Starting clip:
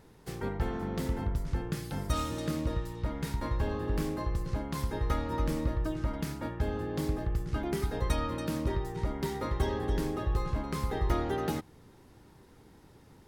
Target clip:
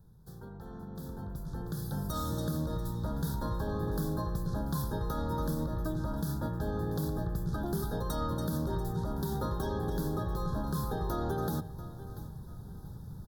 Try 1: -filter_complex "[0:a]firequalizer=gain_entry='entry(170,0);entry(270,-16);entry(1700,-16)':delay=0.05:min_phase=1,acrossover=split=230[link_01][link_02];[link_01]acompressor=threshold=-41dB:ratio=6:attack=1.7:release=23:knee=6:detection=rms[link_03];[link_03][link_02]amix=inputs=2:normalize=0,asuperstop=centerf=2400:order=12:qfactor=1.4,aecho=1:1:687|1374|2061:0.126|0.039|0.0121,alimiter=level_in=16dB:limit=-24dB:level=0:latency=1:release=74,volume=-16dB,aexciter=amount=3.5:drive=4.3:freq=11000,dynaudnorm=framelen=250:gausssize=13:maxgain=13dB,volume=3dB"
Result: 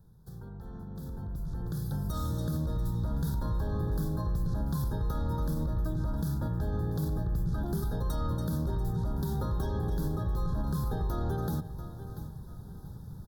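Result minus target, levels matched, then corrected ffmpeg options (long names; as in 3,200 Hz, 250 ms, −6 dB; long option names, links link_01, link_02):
downward compressor: peak gain reduction −9 dB
-filter_complex "[0:a]firequalizer=gain_entry='entry(170,0);entry(270,-16);entry(1700,-16)':delay=0.05:min_phase=1,acrossover=split=230[link_01][link_02];[link_01]acompressor=threshold=-52dB:ratio=6:attack=1.7:release=23:knee=6:detection=rms[link_03];[link_03][link_02]amix=inputs=2:normalize=0,asuperstop=centerf=2400:order=12:qfactor=1.4,aecho=1:1:687|1374|2061:0.126|0.039|0.0121,alimiter=level_in=16dB:limit=-24dB:level=0:latency=1:release=74,volume=-16dB,aexciter=amount=3.5:drive=4.3:freq=11000,dynaudnorm=framelen=250:gausssize=13:maxgain=13dB,volume=3dB"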